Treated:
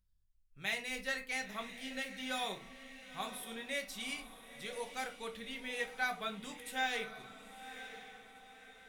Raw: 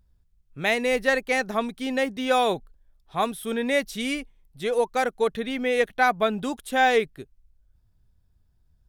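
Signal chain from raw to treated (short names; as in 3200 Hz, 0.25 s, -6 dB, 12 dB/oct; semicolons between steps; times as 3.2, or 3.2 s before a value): passive tone stack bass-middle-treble 5-5-5; diffused feedback echo 0.971 s, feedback 42%, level -11.5 dB; shoebox room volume 160 m³, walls furnished, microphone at 1.1 m; gain -3.5 dB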